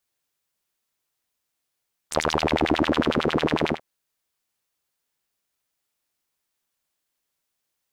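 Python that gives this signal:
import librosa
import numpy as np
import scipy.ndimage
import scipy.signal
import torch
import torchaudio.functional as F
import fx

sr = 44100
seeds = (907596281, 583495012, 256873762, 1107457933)

y = fx.sub_patch_wobble(sr, seeds[0], note=39, wave='saw', wave2='saw', interval_st=0, level2_db=-9.0, sub_db=-15.0, noise_db=-26.5, kind='bandpass', cutoff_hz=890.0, q=4.1, env_oct=1.5, env_decay_s=0.39, env_sustain_pct=10, attack_ms=9.5, decay_s=1.1, sustain_db=-2.5, release_s=0.1, note_s=1.59, lfo_hz=11.0, wobble_oct=1.9)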